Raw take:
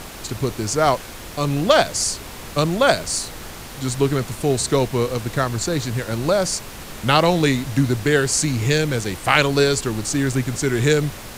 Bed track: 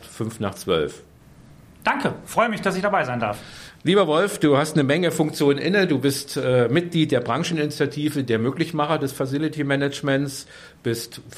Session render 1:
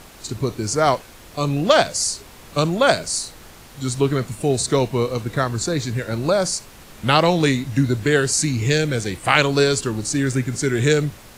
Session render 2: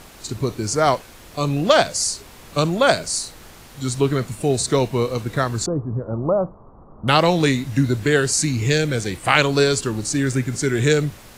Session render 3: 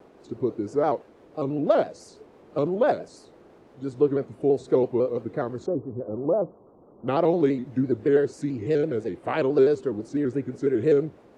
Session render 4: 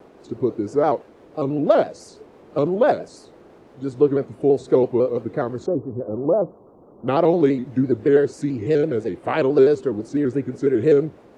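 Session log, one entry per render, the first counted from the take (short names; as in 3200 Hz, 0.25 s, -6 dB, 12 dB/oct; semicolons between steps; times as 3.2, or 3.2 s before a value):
noise print and reduce 8 dB
5.66–7.08 Chebyshev low-pass 1200 Hz, order 5
band-pass 400 Hz, Q 1.6; shaped vibrato square 6 Hz, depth 100 cents
gain +4.5 dB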